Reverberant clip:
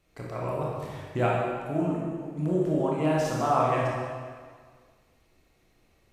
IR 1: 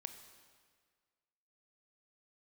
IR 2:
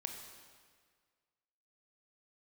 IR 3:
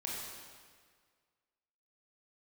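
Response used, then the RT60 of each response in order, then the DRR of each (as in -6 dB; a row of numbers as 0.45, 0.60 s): 3; 1.7, 1.8, 1.8 s; 7.5, 3.0, -4.5 dB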